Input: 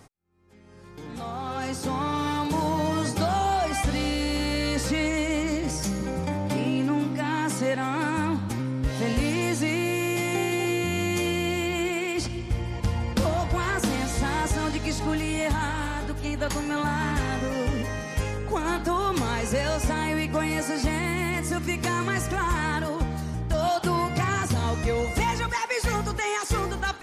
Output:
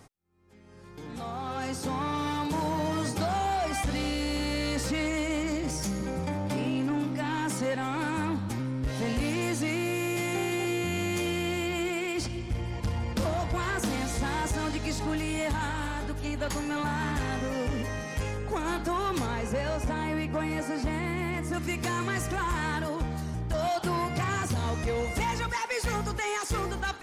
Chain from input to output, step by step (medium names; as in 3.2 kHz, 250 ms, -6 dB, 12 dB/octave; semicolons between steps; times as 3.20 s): 19.26–21.54 s: treble shelf 3 kHz -9 dB; saturation -20.5 dBFS, distortion -18 dB; trim -2 dB